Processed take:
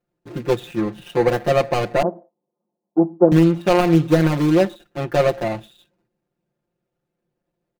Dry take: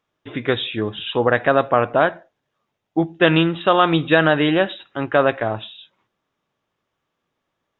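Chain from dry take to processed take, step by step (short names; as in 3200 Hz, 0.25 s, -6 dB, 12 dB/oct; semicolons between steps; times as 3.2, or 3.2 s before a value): median filter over 41 samples; 2.02–3.32 elliptic band-pass 190–1000 Hz, stop band 50 dB; comb 5.7 ms, depth 97%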